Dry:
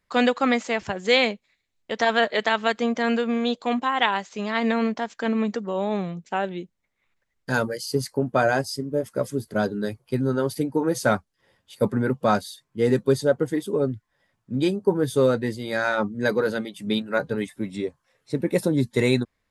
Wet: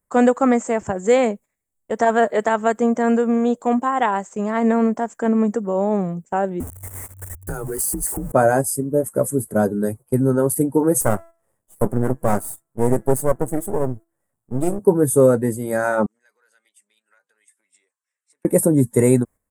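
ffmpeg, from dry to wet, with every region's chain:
ffmpeg -i in.wav -filter_complex "[0:a]asettb=1/sr,asplit=3[link_01][link_02][link_03];[link_01]atrim=end=6.604[link_04];[link_02]atrim=start=6.6:end=8.32,asetpts=PTS-STARTPTS,afade=type=in:duration=0.004:curve=qsin,afade=type=out:start_time=1.716:duration=0.004:curve=qsin,aeval=exprs='val(0)+0.5*0.0188*sgn(val(0))':channel_layout=same,acompressor=threshold=-28dB:ratio=12:attack=3.2:release=140:knee=1:detection=peak,afreqshift=-96[link_05];[link_03]atrim=start=8.316[link_06];[link_04][link_05]acrossfade=duration=0.004:curve1=hsin:curve2=qsin[link_07];[link_07][link_06]acrossfade=duration=0.004:curve1=qsin:curve2=hsin,asettb=1/sr,asplit=3[link_08][link_09][link_10];[link_08]atrim=end=11.014[link_11];[link_09]atrim=start=11.01:end=14.79,asetpts=PTS-STARTPTS,afade=type=in:duration=0.004:curve=qsin,afade=type=out:start_time=3.776:duration=0.004:curve=qsin,bandreject=frequency=333.8:width_type=h:width=4,bandreject=frequency=667.6:width_type=h:width=4,bandreject=frequency=1001.4:width_type=h:width=4,bandreject=frequency=1335.2:width_type=h:width=4,bandreject=frequency=1669:width_type=h:width=4,bandreject=frequency=2002.8:width_type=h:width=4,aeval=exprs='max(val(0),0)':channel_layout=same[link_12];[link_10]atrim=start=14.786[link_13];[link_11][link_12]acrossfade=duration=0.004:curve1=hsin:curve2=qsin[link_14];[link_14][link_13]acrossfade=duration=0.004:curve1=qsin:curve2=hsin,asettb=1/sr,asplit=3[link_15][link_16][link_17];[link_15]atrim=end=16.064[link_18];[link_16]atrim=start=16.06:end=18.45,asetpts=PTS-STARTPTS,afade=type=in:duration=0.004:curve=qsin,afade=type=out:start_time=2.386:duration=0.004:curve=qsin,acompressor=threshold=-30dB:ratio=12:attack=3.2:release=140:knee=1:detection=peak,asuperpass=centerf=3500:order=4:qfactor=0.91[link_19];[link_17]atrim=start=18.446[link_20];[link_18][link_19]acrossfade=duration=0.004:curve1=hsin:curve2=qsin[link_21];[link_21][link_20]acrossfade=duration=0.004:curve1=qsin:curve2=hsin,equalizer=frequency=2400:width_type=o:width=0.44:gain=-2.5,agate=range=-9dB:threshold=-41dB:ratio=16:detection=peak,firequalizer=gain_entry='entry(630,0);entry(4000,-24);entry(8100,11)':delay=0.05:min_phase=1,volume=6dB" out.wav

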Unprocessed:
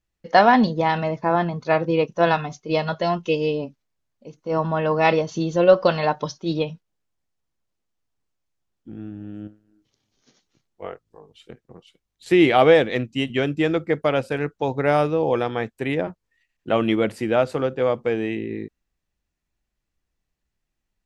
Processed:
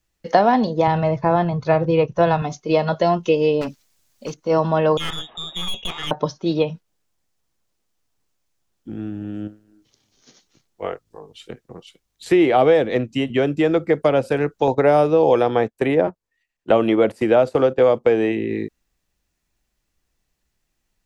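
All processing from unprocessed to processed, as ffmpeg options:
ffmpeg -i in.wav -filter_complex "[0:a]asettb=1/sr,asplit=3[link_01][link_02][link_03];[link_01]atrim=end=0.874[link_04];[link_02]atrim=start=0.87:end=2.42,asetpts=PTS-STARTPTS,afade=type=in:duration=0.004:curve=qsin,afade=type=out:start_time=1.546:duration=0.004:curve=qsin,lowpass=frequency=2300:poles=1,lowshelf=frequency=160:width_type=q:width=1.5:gain=10[link_05];[link_03]atrim=start=2.416[link_06];[link_04][link_05]acrossfade=duration=0.004:curve1=hsin:curve2=qsin[link_07];[link_07][link_06]acrossfade=duration=0.004:curve1=qsin:curve2=hsin,asettb=1/sr,asplit=3[link_08][link_09][link_10];[link_08]atrim=end=3.614[link_11];[link_09]atrim=start=3.61:end=4.34,asetpts=PTS-STARTPTS,afade=type=in:duration=0.004:curve=qsin,afade=type=out:start_time=0.726:duration=0.004:curve=qsin,acontrast=28,highshelf=frequency=2500:gain=10,asoftclip=type=hard:threshold=-28.5dB[link_12];[link_10]atrim=start=4.336[link_13];[link_11][link_12]acrossfade=duration=0.004:curve1=hsin:curve2=qsin[link_14];[link_14][link_13]acrossfade=duration=0.004:curve1=qsin:curve2=hsin,asettb=1/sr,asplit=3[link_15][link_16][link_17];[link_15]atrim=end=4.974[link_18];[link_16]atrim=start=4.97:end=6.11,asetpts=PTS-STARTPTS,afade=type=in:duration=0.004:curve=qsin,afade=type=out:start_time=1.136:duration=0.004:curve=qsin,lowshelf=frequency=200:gain=-11.5,lowpass=frequency=3300:width_type=q:width=0.5098,lowpass=frequency=3300:width_type=q:width=0.6013,lowpass=frequency=3300:width_type=q:width=0.9,lowpass=frequency=3300:width_type=q:width=2.563,afreqshift=-3900,aeval=exprs='(tanh(7.94*val(0)+0.45)-tanh(0.45))/7.94':channel_layout=same[link_19];[link_17]atrim=start=6.106[link_20];[link_18][link_19]acrossfade=duration=0.004:curve1=hsin:curve2=qsin[link_21];[link_21][link_20]acrossfade=duration=0.004:curve1=qsin:curve2=hsin,asettb=1/sr,asplit=3[link_22][link_23][link_24];[link_22]atrim=end=14.674[link_25];[link_23]atrim=start=14.67:end=18.32,asetpts=PTS-STARTPTS,afade=type=in:duration=0.004:curve=qsin,afade=type=out:start_time=3.646:duration=0.004:curve=qsin,agate=range=-13dB:threshold=-32dB:ratio=16:release=100:detection=peak,equalizer=frequency=640:width=0.5:gain=4[link_26];[link_24]atrim=start=18.316[link_27];[link_25][link_26]acrossfade=duration=0.004:curve1=hsin:curve2=qsin[link_28];[link_28][link_27]acrossfade=duration=0.004:curve1=qsin:curve2=hsin,bass=frequency=250:gain=-2,treble=frequency=4000:gain=4,acrossover=split=410|950|2300[link_29][link_30][link_31][link_32];[link_29]acompressor=threshold=-28dB:ratio=4[link_33];[link_30]acompressor=threshold=-22dB:ratio=4[link_34];[link_31]acompressor=threshold=-40dB:ratio=4[link_35];[link_32]acompressor=threshold=-45dB:ratio=4[link_36];[link_33][link_34][link_35][link_36]amix=inputs=4:normalize=0,volume=7dB" out.wav

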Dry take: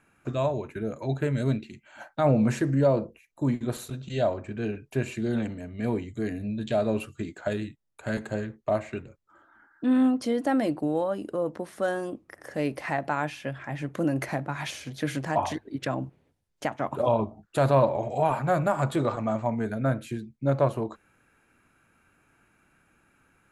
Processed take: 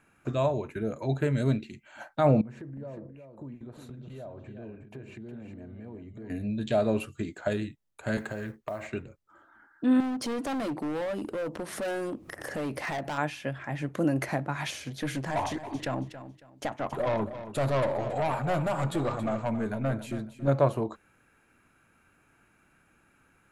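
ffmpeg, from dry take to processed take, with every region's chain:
ffmpeg -i in.wav -filter_complex "[0:a]asettb=1/sr,asplit=3[link_01][link_02][link_03];[link_01]atrim=end=2.414[link_04];[link_02]atrim=start=2.41:end=6.3,asetpts=PTS-STARTPTS,afade=type=in:duration=0.004:curve=qsin,afade=type=out:start_time=3.886:duration=0.004:curve=qsin,lowpass=frequency=1100:poles=1,acompressor=threshold=-42dB:ratio=4:attack=3.2:release=140:knee=1:detection=peak,aecho=1:1:362:0.376,atrim=end_sample=171549[link_05];[link_03]atrim=start=6.296[link_06];[link_04][link_05]acrossfade=duration=0.004:curve1=hsin:curve2=qsin[link_07];[link_07][link_06]acrossfade=duration=0.004:curve1=qsin:curve2=hsin,asettb=1/sr,asplit=3[link_08][link_09][link_10];[link_08]atrim=end=8.184[link_11];[link_09]atrim=start=8.18:end=8.87,asetpts=PTS-STARTPTS,afade=type=in:duration=0.004:curve=qsin,afade=type=out:start_time=0.686:duration=0.004:curve=qsin,equalizer=frequency=1500:width=0.61:gain=5,acompressor=threshold=-30dB:ratio=12:attack=3.2:release=140:knee=1:detection=peak,acrusher=bits=8:mode=log:mix=0:aa=0.000001[link_12];[link_10]atrim=start=8.866[link_13];[link_11][link_12]acrossfade=duration=0.004:curve1=hsin:curve2=qsin[link_14];[link_14][link_13]acrossfade=duration=0.004:curve1=qsin:curve2=hsin,asettb=1/sr,asplit=3[link_15][link_16][link_17];[link_15]atrim=end=10.004[link_18];[link_16]atrim=start=10:end=13.18,asetpts=PTS-STARTPTS,afade=type=in:duration=0.004:curve=qsin,afade=type=out:start_time=3.176:duration=0.004:curve=qsin,acompressor=mode=upward:threshold=-26dB:ratio=2.5:attack=3.2:release=140:knee=2.83:detection=peak,volume=29dB,asoftclip=hard,volume=-29dB[link_19];[link_17]atrim=start=13.176[link_20];[link_18][link_19]acrossfade=duration=0.004:curve1=hsin:curve2=qsin[link_21];[link_21][link_20]acrossfade=duration=0.004:curve1=qsin:curve2=hsin,asettb=1/sr,asplit=3[link_22][link_23][link_24];[link_22]atrim=end=15.024[link_25];[link_23]atrim=start=15.02:end=20.48,asetpts=PTS-STARTPTS,afade=type=in:duration=0.004:curve=qsin,afade=type=out:start_time=5.456:duration=0.004:curve=qsin,aeval=exprs='(tanh(14.1*val(0)+0.2)-tanh(0.2))/14.1':channel_layout=same,aecho=1:1:276|552|828:0.237|0.064|0.0173,atrim=end_sample=240786[link_26];[link_24]atrim=start=20.476[link_27];[link_25][link_26]acrossfade=duration=0.004:curve1=hsin:curve2=qsin[link_28];[link_28][link_27]acrossfade=duration=0.004:curve1=qsin:curve2=hsin" out.wav

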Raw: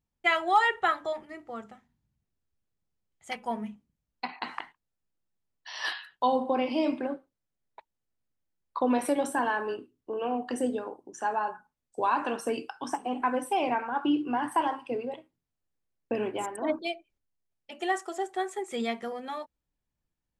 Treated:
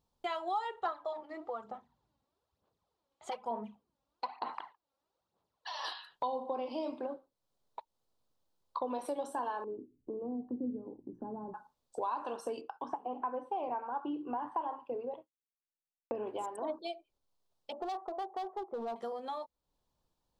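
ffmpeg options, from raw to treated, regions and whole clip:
ffmpeg -i in.wav -filter_complex "[0:a]asettb=1/sr,asplit=3[link_01][link_02][link_03];[link_01]atrim=end=0.854[link_04];[link_02]atrim=start=0.85:end=5.84,asetpts=PTS-STARTPTS,afade=type=in:duration=0.004:curve=qsin,afade=type=out:start_time=4.986:duration=0.004:curve=qsin,highpass=54,aphaser=in_gain=1:out_gain=1:delay=3.7:decay=0.59:speed=1.1:type=sinusoidal,asplit=2[link_05][link_06];[link_06]highpass=frequency=720:poles=1,volume=9dB,asoftclip=type=tanh:threshold=-7dB[link_07];[link_05][link_07]amix=inputs=2:normalize=0,lowpass=frequency=1400:poles=1,volume=-6dB[link_08];[link_03]atrim=start=5.836[link_09];[link_04][link_08]acrossfade=duration=0.004:curve1=hsin:curve2=qsin[link_10];[link_10][link_09]acrossfade=duration=0.004:curve1=qsin:curve2=hsin,asettb=1/sr,asplit=3[link_11][link_12][link_13];[link_11]atrim=end=9.644[link_14];[link_12]atrim=start=9.64:end=11.54,asetpts=PTS-STARTPTS,afade=type=in:duration=0.004:curve=qsin,afade=type=out:start_time=1.896:duration=0.004:curve=qsin,lowpass=frequency=290:width_type=q:width=1.8,asubboost=boost=10:cutoff=200[link_15];[link_13]atrim=start=11.536[link_16];[link_14][link_15]acrossfade=duration=0.004:curve1=hsin:curve2=qsin[link_17];[link_17][link_16]acrossfade=duration=0.004:curve1=qsin:curve2=hsin,asettb=1/sr,asplit=3[link_18][link_19][link_20];[link_18]atrim=end=12.614[link_21];[link_19]atrim=start=12.61:end=16.27,asetpts=PTS-STARTPTS,afade=type=in:duration=0.004:curve=qsin,afade=type=out:start_time=3.656:duration=0.004:curve=qsin,lowpass=2100,agate=range=-33dB:threshold=-49dB:ratio=3:release=100:detection=peak[link_22];[link_20]atrim=start=16.266[link_23];[link_21][link_22]acrossfade=duration=0.004:curve1=hsin:curve2=qsin[link_24];[link_24][link_23]acrossfade=duration=0.004:curve1=qsin:curve2=hsin,asettb=1/sr,asplit=3[link_25][link_26][link_27];[link_25]atrim=end=17.724[link_28];[link_26]atrim=start=17.72:end=18.96,asetpts=PTS-STARTPTS,afade=type=in:duration=0.004:curve=qsin,afade=type=out:start_time=1.236:duration=0.004:curve=qsin,lowpass=frequency=1100:width=0.5412,lowpass=frequency=1100:width=1.3066,equalizer=frequency=790:width_type=o:width=0.96:gain=6,volume=30dB,asoftclip=hard,volume=-30dB[link_29];[link_27]atrim=start=18.956[link_30];[link_28][link_29]acrossfade=duration=0.004:curve1=hsin:curve2=qsin[link_31];[link_31][link_30]acrossfade=duration=0.004:curve1=qsin:curve2=hsin,equalizer=frequency=500:width_type=o:width=1:gain=7,equalizer=frequency=1000:width_type=o:width=1:gain=10,equalizer=frequency=2000:width_type=o:width=1:gain=-9,equalizer=frequency=4000:width_type=o:width=1:gain=9,acompressor=threshold=-46dB:ratio=2.5,volume=2dB" out.wav

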